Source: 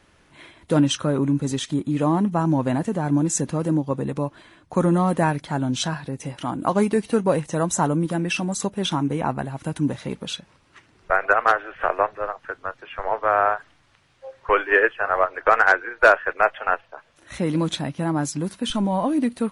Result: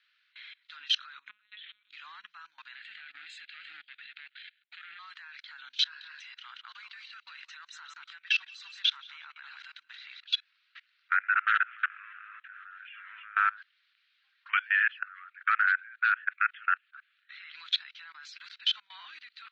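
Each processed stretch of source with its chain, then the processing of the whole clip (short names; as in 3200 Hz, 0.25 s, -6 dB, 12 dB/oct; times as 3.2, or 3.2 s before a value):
1.29–1.89 G.711 law mismatch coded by mu + LPF 2300 Hz 6 dB/oct + monotone LPC vocoder at 8 kHz 210 Hz
2.75–4.99 sample leveller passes 2 + fixed phaser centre 2500 Hz, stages 4
5.83–10.25 compressor, threshold -21 dBFS + feedback echo 0.178 s, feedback 17%, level -10 dB
11.17–13.35 fixed phaser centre 2000 Hz, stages 4 + tapped delay 64/67/68/307/330 ms -8/-9/-18.5/-8/-13.5 dB
14.99–17.54 brick-wall FIR high-pass 1100 Hz + air absorption 290 m
whole clip: elliptic band-pass 1400–4200 Hz, stop band 50 dB; tilt +4 dB/oct; level quantiser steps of 24 dB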